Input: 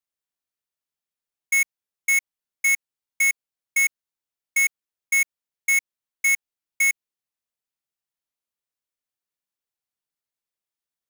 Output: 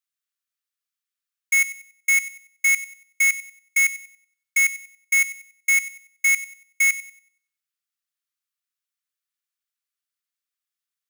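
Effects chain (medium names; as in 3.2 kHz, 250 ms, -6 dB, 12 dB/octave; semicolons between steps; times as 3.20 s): steep high-pass 1.1 kHz 96 dB/octave; on a send: feedback echo behind a high-pass 94 ms, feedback 31%, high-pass 2.1 kHz, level -13.5 dB; on the sum: trim +1.5 dB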